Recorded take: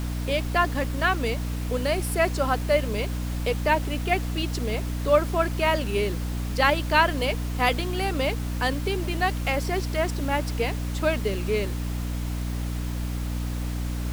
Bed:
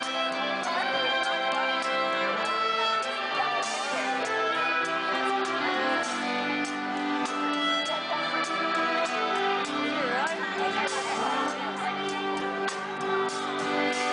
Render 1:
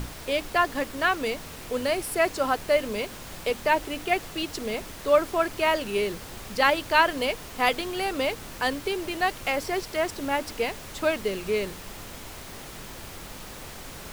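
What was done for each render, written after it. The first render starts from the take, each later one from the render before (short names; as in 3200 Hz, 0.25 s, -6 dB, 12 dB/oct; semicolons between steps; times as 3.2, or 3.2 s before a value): notches 60/120/180/240/300 Hz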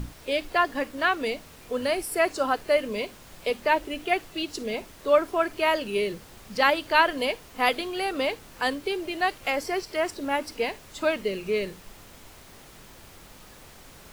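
noise print and reduce 8 dB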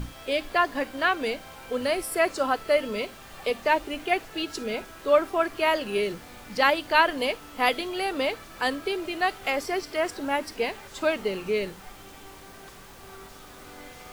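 add bed -19.5 dB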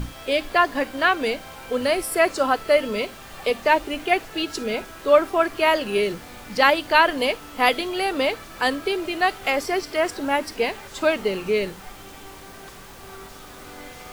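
gain +4.5 dB; limiter -3 dBFS, peak gain reduction 1.5 dB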